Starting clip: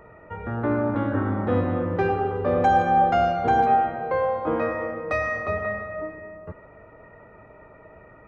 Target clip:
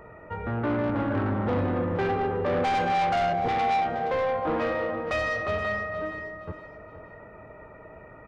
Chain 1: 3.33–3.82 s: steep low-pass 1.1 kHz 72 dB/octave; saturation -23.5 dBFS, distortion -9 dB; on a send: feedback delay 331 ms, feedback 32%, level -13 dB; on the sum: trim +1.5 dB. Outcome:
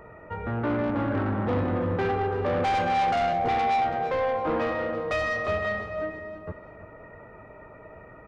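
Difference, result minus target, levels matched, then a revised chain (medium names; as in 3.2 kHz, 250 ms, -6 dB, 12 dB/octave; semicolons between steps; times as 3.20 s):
echo 140 ms early
3.33–3.82 s: steep low-pass 1.1 kHz 72 dB/octave; saturation -23.5 dBFS, distortion -9 dB; on a send: feedback delay 471 ms, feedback 32%, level -13 dB; on the sum: trim +1.5 dB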